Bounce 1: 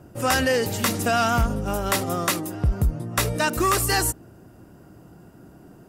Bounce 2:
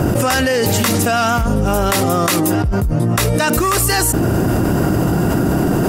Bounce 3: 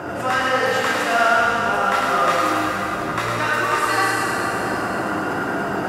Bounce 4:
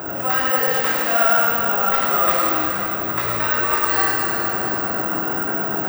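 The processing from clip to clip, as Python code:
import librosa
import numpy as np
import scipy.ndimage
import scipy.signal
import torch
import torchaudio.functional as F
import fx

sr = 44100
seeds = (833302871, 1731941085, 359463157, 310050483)

y1 = fx.env_flatten(x, sr, amount_pct=100)
y1 = y1 * 10.0 ** (1.0 / 20.0)
y2 = fx.bandpass_q(y1, sr, hz=1400.0, q=0.97)
y2 = y2 + 10.0 ** (-4.5 / 20.0) * np.pad(y2, (int(105 * sr / 1000.0), 0))[:len(y2)]
y2 = fx.rev_plate(y2, sr, seeds[0], rt60_s=4.1, hf_ratio=0.9, predelay_ms=0, drr_db=-4.5)
y2 = y2 * 10.0 ** (-4.0 / 20.0)
y3 = (np.kron(y2[::2], np.eye(2)[0]) * 2)[:len(y2)]
y3 = y3 * 10.0 ** (-2.5 / 20.0)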